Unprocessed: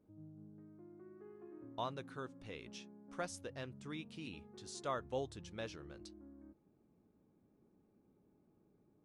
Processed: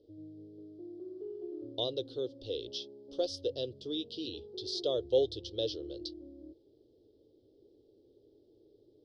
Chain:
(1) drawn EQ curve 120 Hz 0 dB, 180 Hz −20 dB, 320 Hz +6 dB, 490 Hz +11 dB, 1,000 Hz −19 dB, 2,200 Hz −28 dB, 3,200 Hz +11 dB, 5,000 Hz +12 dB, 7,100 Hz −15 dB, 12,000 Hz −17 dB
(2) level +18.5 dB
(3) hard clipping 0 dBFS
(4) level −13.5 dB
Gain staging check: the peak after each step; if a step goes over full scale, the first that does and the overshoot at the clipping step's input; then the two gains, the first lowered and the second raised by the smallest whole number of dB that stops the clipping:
−22.0, −3.5, −3.5, −17.0 dBFS
no step passes full scale

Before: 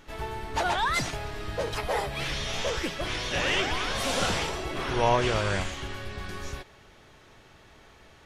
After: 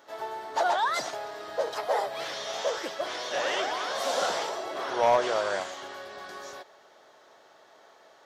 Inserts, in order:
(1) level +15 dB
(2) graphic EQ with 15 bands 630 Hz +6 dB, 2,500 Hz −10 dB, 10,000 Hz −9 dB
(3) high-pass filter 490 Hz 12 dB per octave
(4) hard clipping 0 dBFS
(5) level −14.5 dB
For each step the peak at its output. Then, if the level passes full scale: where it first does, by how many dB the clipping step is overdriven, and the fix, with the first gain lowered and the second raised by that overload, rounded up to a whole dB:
+4.5, +6.5, +5.0, 0.0, −14.5 dBFS
step 1, 5.0 dB
step 1 +10 dB, step 5 −9.5 dB

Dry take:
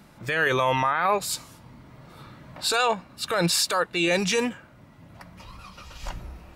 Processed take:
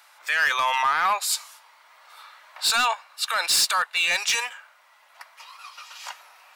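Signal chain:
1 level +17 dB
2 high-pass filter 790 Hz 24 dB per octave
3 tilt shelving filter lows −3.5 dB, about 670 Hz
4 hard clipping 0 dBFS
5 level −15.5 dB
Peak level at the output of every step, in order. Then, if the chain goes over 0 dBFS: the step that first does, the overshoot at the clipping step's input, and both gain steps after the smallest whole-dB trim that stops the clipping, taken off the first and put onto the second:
+7.0, +5.5, +9.0, 0.0, −15.5 dBFS
step 1, 9.0 dB
step 1 +8 dB, step 5 −6.5 dB

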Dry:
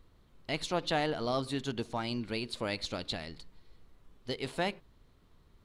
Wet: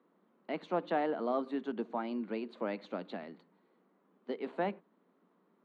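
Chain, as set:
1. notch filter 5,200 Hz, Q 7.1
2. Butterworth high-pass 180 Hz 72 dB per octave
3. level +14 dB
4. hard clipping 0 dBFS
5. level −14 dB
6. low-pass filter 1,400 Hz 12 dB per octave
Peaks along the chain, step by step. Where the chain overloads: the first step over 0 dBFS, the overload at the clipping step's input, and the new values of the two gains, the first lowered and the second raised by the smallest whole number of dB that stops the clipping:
−17.5, −18.5, −4.5, −4.5, −18.5, −20.5 dBFS
no step passes full scale

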